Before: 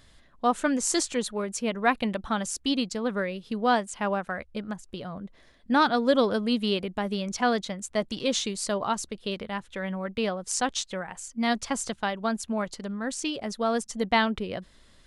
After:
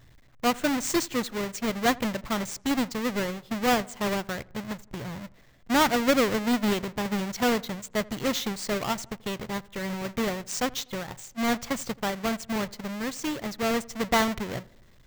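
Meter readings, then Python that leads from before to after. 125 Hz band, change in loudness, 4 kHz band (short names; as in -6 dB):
+2.0 dB, 0.0 dB, -0.5 dB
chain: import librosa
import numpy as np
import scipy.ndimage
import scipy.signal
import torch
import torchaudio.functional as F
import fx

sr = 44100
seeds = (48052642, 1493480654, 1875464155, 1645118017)

y = fx.halfwave_hold(x, sr)
y = fx.graphic_eq_31(y, sr, hz=(125, 2000, 10000), db=(11, 4, -8))
y = fx.echo_filtered(y, sr, ms=82, feedback_pct=54, hz=1700.0, wet_db=-22)
y = F.gain(torch.from_numpy(y), -5.0).numpy()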